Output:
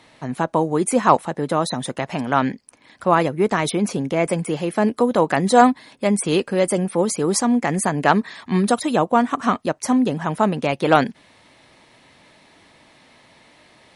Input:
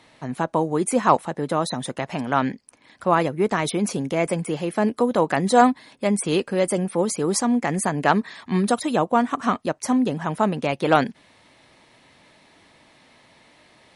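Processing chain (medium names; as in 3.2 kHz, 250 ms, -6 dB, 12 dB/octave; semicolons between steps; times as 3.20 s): 3.75–4.28 s: treble shelf 5.4 kHz -6 dB; trim +2.5 dB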